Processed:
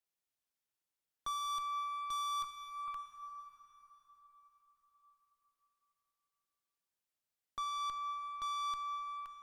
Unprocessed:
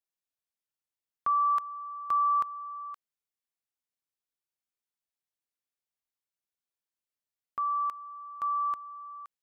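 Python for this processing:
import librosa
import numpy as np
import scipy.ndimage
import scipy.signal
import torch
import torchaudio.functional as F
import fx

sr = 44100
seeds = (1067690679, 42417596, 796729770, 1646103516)

y = fx.highpass(x, sr, hz=1300.0, slope=24, at=(2.44, 2.88))
y = fx.tube_stage(y, sr, drive_db=37.0, bias=0.3)
y = fx.rev_plate(y, sr, seeds[0], rt60_s=4.8, hf_ratio=0.65, predelay_ms=0, drr_db=6.5)
y = y * 10.0 ** (1.0 / 20.0)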